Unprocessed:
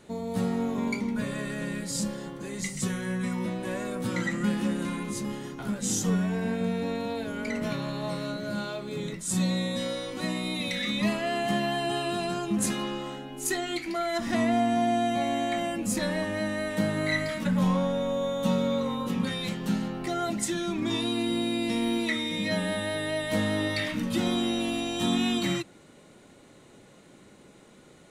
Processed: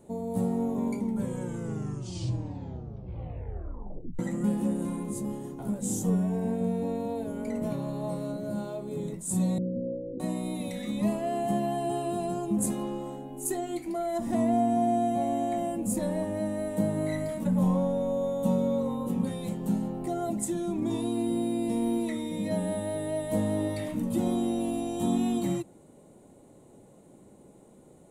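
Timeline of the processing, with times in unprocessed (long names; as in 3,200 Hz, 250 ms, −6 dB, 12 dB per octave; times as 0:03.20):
0:01.01: tape stop 3.18 s
0:09.58–0:10.20: Butterworth low-pass 570 Hz 72 dB per octave
whole clip: flat-topped bell 2,700 Hz −15 dB 2.6 octaves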